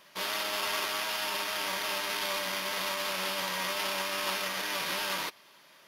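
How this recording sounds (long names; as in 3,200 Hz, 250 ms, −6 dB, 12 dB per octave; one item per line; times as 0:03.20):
background noise floor −58 dBFS
spectral slope −1.5 dB per octave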